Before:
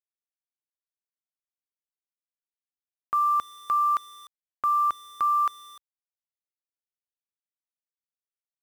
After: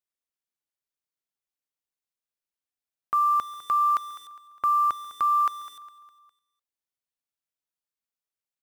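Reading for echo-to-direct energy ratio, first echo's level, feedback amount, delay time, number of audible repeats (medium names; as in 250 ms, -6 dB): -16.0 dB, -17.0 dB, 48%, 204 ms, 3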